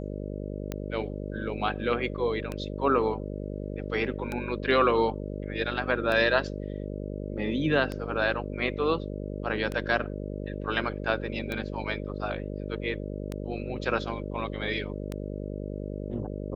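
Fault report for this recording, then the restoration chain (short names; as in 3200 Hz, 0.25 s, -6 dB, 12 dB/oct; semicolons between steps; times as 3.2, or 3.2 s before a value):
buzz 50 Hz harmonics 12 -35 dBFS
tick 33 1/3 rpm -18 dBFS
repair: de-click; de-hum 50 Hz, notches 12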